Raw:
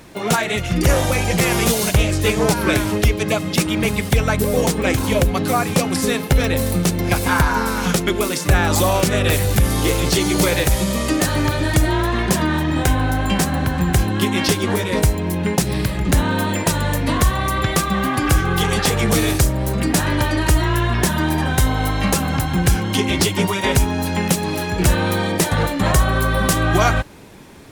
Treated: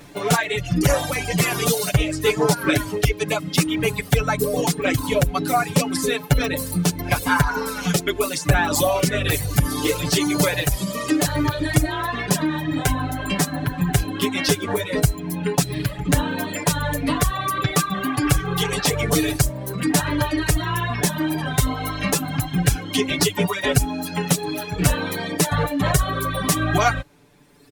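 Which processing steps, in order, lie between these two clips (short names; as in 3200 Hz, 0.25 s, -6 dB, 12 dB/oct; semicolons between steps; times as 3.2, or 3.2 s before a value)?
reverb removal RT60 1.8 s; comb 6.9 ms, depth 86%; gain -3 dB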